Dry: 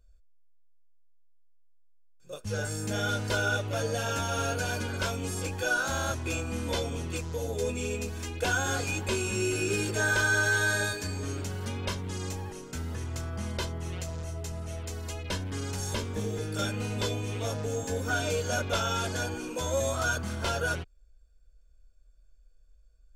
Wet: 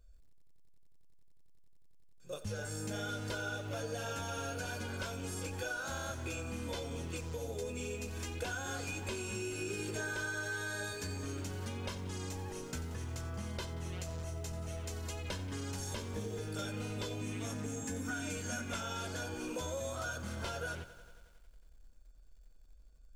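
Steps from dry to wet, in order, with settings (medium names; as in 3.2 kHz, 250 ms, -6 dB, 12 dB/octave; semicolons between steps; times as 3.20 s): 17.21–18.81 s: graphic EQ 250/500/2000/4000/8000 Hz +10/-8/+6/-4/+7 dB; compression 6:1, threshold -37 dBFS, peak gain reduction 14 dB; bit-crushed delay 90 ms, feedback 80%, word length 10-bit, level -15 dB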